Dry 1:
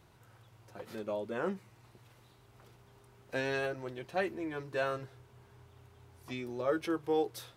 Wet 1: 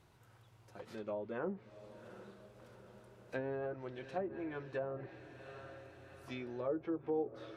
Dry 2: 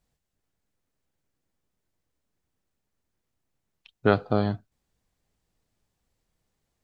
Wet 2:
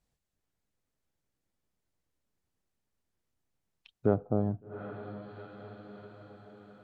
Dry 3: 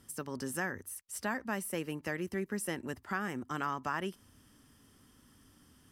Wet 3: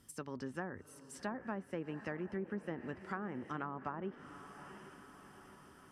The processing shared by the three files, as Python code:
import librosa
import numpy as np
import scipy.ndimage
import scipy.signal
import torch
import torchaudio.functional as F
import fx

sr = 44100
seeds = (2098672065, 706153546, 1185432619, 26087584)

y = fx.echo_diffused(x, sr, ms=756, feedback_pct=58, wet_db=-14.0)
y = fx.env_lowpass_down(y, sr, base_hz=630.0, full_db=-29.0)
y = y * 10.0 ** (-4.0 / 20.0)